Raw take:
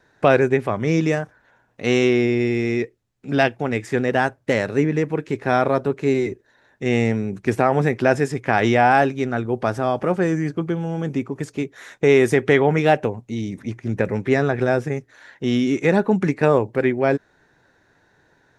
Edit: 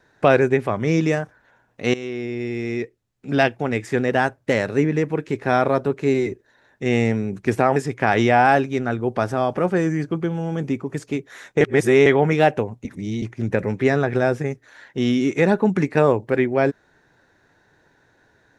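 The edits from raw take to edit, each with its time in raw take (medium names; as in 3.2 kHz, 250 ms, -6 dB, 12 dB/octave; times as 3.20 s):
1.94–3.31 s: fade in linear, from -16.5 dB
7.76–8.22 s: delete
12.07–12.52 s: reverse
13.31–13.68 s: reverse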